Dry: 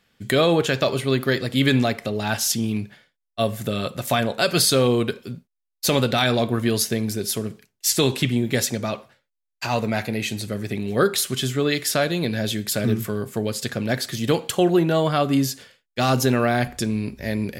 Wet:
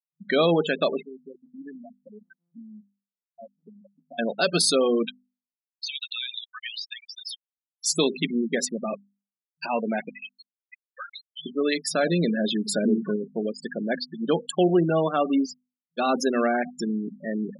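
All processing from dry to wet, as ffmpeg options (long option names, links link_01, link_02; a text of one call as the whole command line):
ffmpeg -i in.wav -filter_complex "[0:a]asettb=1/sr,asplit=3[link_01][link_02][link_03];[link_01]atrim=end=1.024[link_04];[link_02]atrim=start=1.02:end=4.19,asetpts=PTS-STARTPTS,afade=type=in:duration=0.004:curve=qsin,afade=type=out:start_time=3.166:duration=0.004:curve=qsin,aeval=exprs='if(lt(val(0),0),0.251*val(0),val(0))':channel_layout=same,acompressor=threshold=-39dB:ratio=2:attack=3.2:release=140:knee=1:detection=peak[link_05];[link_03]atrim=start=4.186[link_06];[link_04][link_05]acrossfade=duration=0.004:curve1=hsin:curve2=qsin[link_07];[link_07][link_06]acrossfade=duration=0.004:curve1=qsin:curve2=hsin,asettb=1/sr,asplit=3[link_08][link_09][link_10];[link_08]atrim=end=5.054[link_11];[link_09]atrim=start=5.05:end=7.86,asetpts=PTS-STARTPTS,afade=type=in:duration=0.004:curve=qsin,afade=type=out:start_time=2.806:duration=0.004:curve=qsin,highpass=1500,equalizer=frequency=3200:width=0.69:gain=12,acompressor=threshold=-25dB:ratio=5:attack=3.2:release=140:knee=1:detection=peak[link_12];[link_10]atrim=start=7.856[link_13];[link_11][link_12]acrossfade=duration=0.004:curve1=hsin:curve2=qsin[link_14];[link_14][link_13]acrossfade=duration=0.004:curve1=qsin:curve2=hsin,asettb=1/sr,asplit=3[link_15][link_16][link_17];[link_15]atrim=end=10.094[link_18];[link_16]atrim=start=10.09:end=11.46,asetpts=PTS-STARTPTS,afade=type=in:duration=0.004:curve=qsin,afade=type=out:start_time=1.366:duration=0.004:curve=qsin,highpass=1500,acompressor=threshold=-28dB:ratio=5:attack=3.2:release=140:knee=1:detection=peak[link_19];[link_17]atrim=start=11.456[link_20];[link_18][link_19]acrossfade=duration=0.004:curve1=hsin:curve2=qsin[link_21];[link_21][link_20]acrossfade=duration=0.004:curve1=qsin:curve2=hsin,asettb=1/sr,asplit=3[link_22][link_23][link_24];[link_22]atrim=end=12.034[link_25];[link_23]atrim=start=12.03:end=13.16,asetpts=PTS-STARTPTS,afade=type=in:duration=0.004:curve=qsin,afade=type=out:start_time=1.126:duration=0.004:curve=qsin,aeval=exprs='val(0)+0.5*0.0398*sgn(val(0))':channel_layout=same,lowshelf=frequency=280:gain=4[link_26];[link_24]atrim=start=13.156[link_27];[link_25][link_26]acrossfade=duration=0.004:curve1=hsin:curve2=qsin[link_28];[link_28][link_27]acrossfade=duration=0.004:curve1=qsin:curve2=hsin,afftfilt=real='re*gte(hypot(re,im),0.1)':imag='im*gte(hypot(re,im),0.1)':win_size=1024:overlap=0.75,bandreject=frequency=50:width_type=h:width=6,bandreject=frequency=100:width_type=h:width=6,bandreject=frequency=150:width_type=h:width=6,bandreject=frequency=200:width_type=h:width=6,bandreject=frequency=250:width_type=h:width=6,afftfilt=real='re*between(b*sr/4096,160,11000)':imag='im*between(b*sr/4096,160,11000)':win_size=4096:overlap=0.75,volume=-2dB" out.wav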